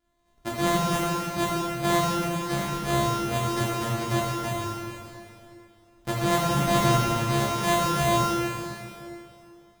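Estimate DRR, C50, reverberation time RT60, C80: −8.0 dB, −3.5 dB, 2.7 s, −1.5 dB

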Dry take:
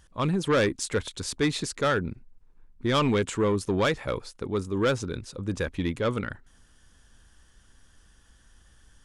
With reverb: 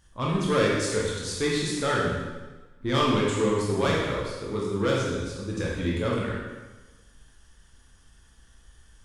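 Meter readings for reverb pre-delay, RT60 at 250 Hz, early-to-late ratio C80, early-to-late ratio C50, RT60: 8 ms, 1.2 s, 2.5 dB, −0.5 dB, 1.2 s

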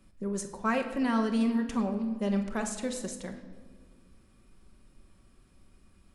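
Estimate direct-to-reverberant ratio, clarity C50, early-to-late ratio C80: 4.0 dB, 9.0 dB, 11.0 dB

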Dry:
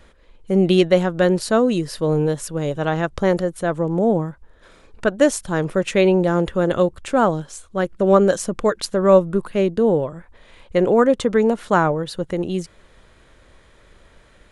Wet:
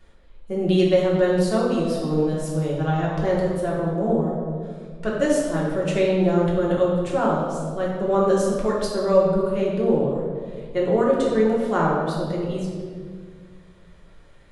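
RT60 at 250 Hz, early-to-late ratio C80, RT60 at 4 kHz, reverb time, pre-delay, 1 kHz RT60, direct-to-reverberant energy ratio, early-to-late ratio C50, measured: 2.4 s, 2.5 dB, 1.1 s, 1.9 s, 3 ms, 1.7 s, −5.0 dB, 1.0 dB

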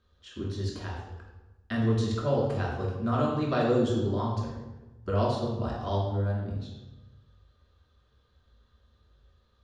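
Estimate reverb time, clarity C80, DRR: 1.1 s, 5.0 dB, −4.5 dB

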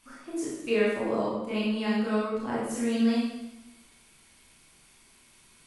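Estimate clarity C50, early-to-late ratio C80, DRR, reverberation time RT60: −0.5 dB, 3.0 dB, −7.5 dB, 0.95 s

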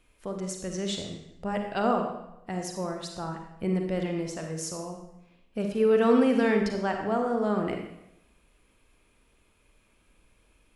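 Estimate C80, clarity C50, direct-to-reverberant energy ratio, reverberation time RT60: 7.0 dB, 4.0 dB, 3.0 dB, 0.85 s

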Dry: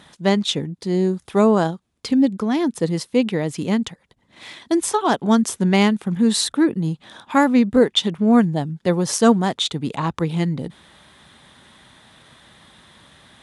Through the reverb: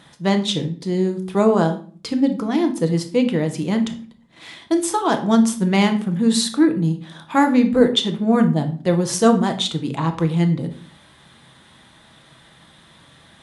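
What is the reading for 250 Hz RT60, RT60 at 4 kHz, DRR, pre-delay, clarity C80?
0.70 s, 0.35 s, 5.5 dB, 6 ms, 16.5 dB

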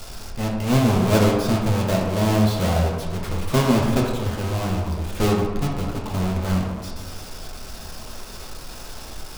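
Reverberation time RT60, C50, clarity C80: 1.4 s, 2.0 dB, 4.5 dB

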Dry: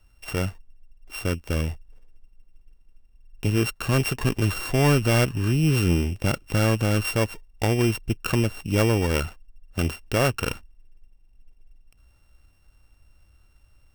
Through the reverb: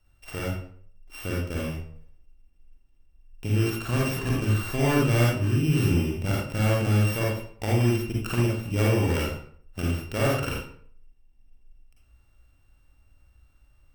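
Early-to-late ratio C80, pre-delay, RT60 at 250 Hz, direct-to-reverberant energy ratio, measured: 5.0 dB, 39 ms, 0.60 s, −4.5 dB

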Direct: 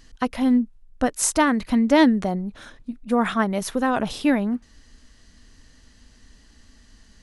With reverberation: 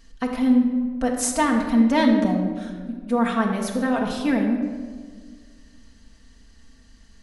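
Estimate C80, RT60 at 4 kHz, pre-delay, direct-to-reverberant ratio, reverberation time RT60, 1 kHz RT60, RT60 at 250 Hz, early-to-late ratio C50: 6.5 dB, 0.90 s, 4 ms, 0.5 dB, 1.7 s, 1.4 s, 2.4 s, 5.0 dB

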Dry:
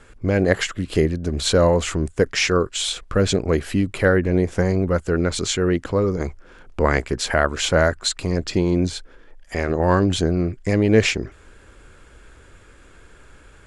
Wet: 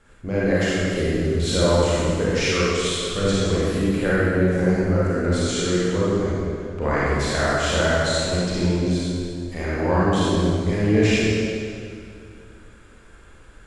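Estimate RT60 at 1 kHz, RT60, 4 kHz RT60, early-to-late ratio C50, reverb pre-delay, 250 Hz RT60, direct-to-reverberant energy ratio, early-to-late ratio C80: 2.3 s, 2.4 s, 1.9 s, −5.5 dB, 30 ms, 2.7 s, −9.0 dB, −2.5 dB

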